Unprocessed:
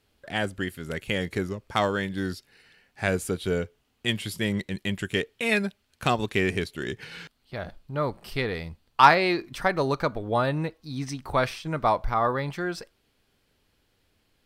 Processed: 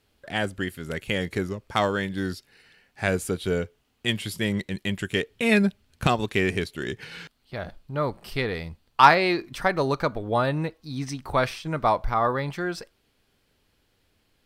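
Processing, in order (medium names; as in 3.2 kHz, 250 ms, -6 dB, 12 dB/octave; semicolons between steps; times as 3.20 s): 5.30–6.07 s: bass shelf 280 Hz +11 dB; trim +1 dB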